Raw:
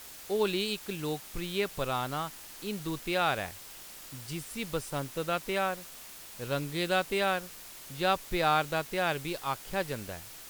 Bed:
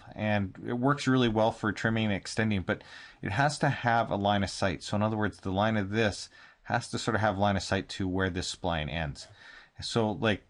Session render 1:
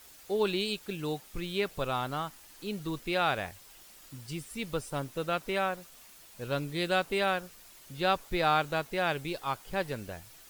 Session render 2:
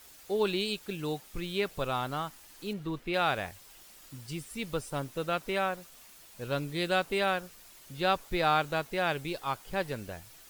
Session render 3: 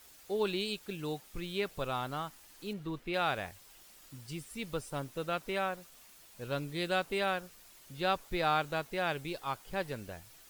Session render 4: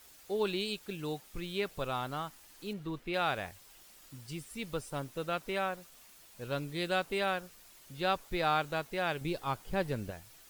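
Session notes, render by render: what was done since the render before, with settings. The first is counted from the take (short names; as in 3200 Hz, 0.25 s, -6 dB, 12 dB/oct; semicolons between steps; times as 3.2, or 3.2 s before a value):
denoiser 8 dB, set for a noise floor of -48 dBFS
2.73–3.14 tone controls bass 0 dB, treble -11 dB
gain -3.5 dB
9.21–10.11 low shelf 450 Hz +7.5 dB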